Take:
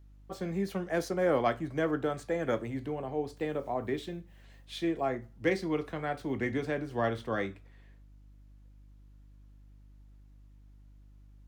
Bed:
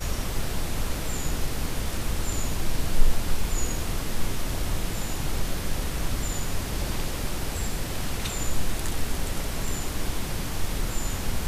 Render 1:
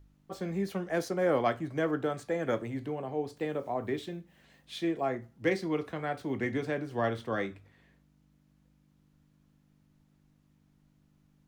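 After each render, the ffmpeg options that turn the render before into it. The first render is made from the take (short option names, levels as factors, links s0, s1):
-af "bandreject=f=50:t=h:w=4,bandreject=f=100:t=h:w=4"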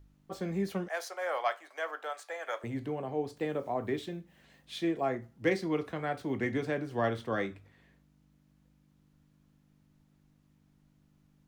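-filter_complex "[0:a]asettb=1/sr,asplit=3[s0][s1][s2];[s0]atrim=end=0.884[s3];[s1]atrim=start=0.88:end=2.64,asetpts=PTS-STARTPTS,afade=t=in:d=0.004:c=qsin,afade=t=out:st=1.756:d=0.004:c=qsin,highpass=f=660:w=0.5412,highpass=f=660:w=1.3066[s4];[s2]atrim=start=2.636[s5];[s3][s4]acrossfade=d=0.004:c1=hsin:c2=qsin[s6];[s6][s5]acrossfade=d=0.004:c1=qsin:c2=hsin"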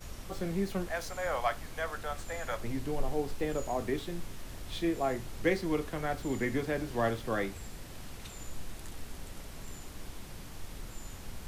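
-filter_complex "[1:a]volume=0.168[s0];[0:a][s0]amix=inputs=2:normalize=0"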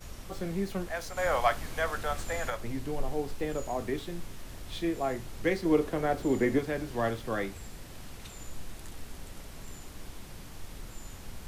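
-filter_complex "[0:a]asettb=1/sr,asplit=3[s0][s1][s2];[s0]atrim=end=5.654[s3];[s1]atrim=start=5.65:end=6.59,asetpts=PTS-STARTPTS,afade=t=in:d=0.004:c=qsin,afade=t=out:st=0.936:d=0.004:c=qsin,equalizer=f=420:t=o:w=2:g=8[s4];[s2]atrim=start=6.586[s5];[s3][s4]acrossfade=d=0.004:c1=hsin:c2=qsin[s6];[s6][s5]acrossfade=d=0.004:c1=qsin:c2=hsin,asplit=3[s7][s8][s9];[s7]atrim=end=1.172[s10];[s8]atrim=start=1.168:end=2.502,asetpts=PTS-STARTPTS,volume=1.78[s11];[s9]atrim=start=2.498[s12];[s10][s11]acrossfade=d=0.004:c1=hsin:c2=hsin[s13];[s13][s12]acrossfade=d=0.004:c1=hsin:c2=hsin"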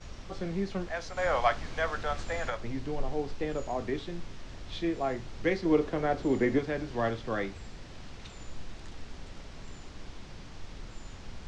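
-af "lowpass=f=6100:w=0.5412,lowpass=f=6100:w=1.3066"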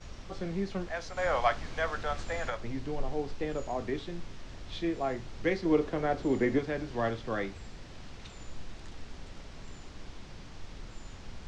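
-af "volume=0.891"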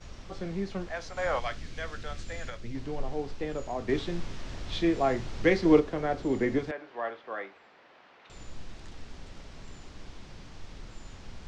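-filter_complex "[0:a]asettb=1/sr,asplit=3[s0][s1][s2];[s0]atrim=end=1.394[s3];[s1]atrim=start=1.39:end=2.75,asetpts=PTS-STARTPTS,afade=t=in:d=0.004:c=qsin,afade=t=out:st=1.356:d=0.004:c=qsin,equalizer=f=870:w=0.82:g=-11.5[s4];[s2]atrim=start=2.746[s5];[s3][s4]acrossfade=d=0.004:c1=hsin:c2=qsin[s6];[s6][s5]acrossfade=d=0.004:c1=qsin:c2=hsin,asplit=3[s7][s8][s9];[s7]afade=t=out:st=3.88:d=0.02[s10];[s8]acontrast=53,afade=t=in:st=3.88:d=0.02,afade=t=out:st=5.79:d=0.02[s11];[s9]afade=t=in:st=5.79:d=0.02[s12];[s10][s11][s12]amix=inputs=3:normalize=0,asettb=1/sr,asplit=3[s13][s14][s15];[s13]atrim=end=6.714[s16];[s14]atrim=start=6.71:end=8.3,asetpts=PTS-STARTPTS,afade=t=in:d=0.004:c=qsin,afade=t=out:st=1.586:d=0.004:c=qsin,highpass=580,lowpass=2200[s17];[s15]atrim=start=8.296[s18];[s16][s17]acrossfade=d=0.004:c1=hsin:c2=qsin[s19];[s19][s18]acrossfade=d=0.004:c1=qsin:c2=hsin"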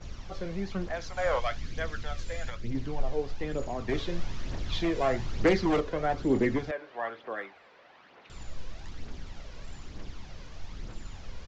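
-af "aresample=16000,asoftclip=type=hard:threshold=0.0944,aresample=44100,aphaser=in_gain=1:out_gain=1:delay=2.1:decay=0.44:speed=1.1:type=triangular"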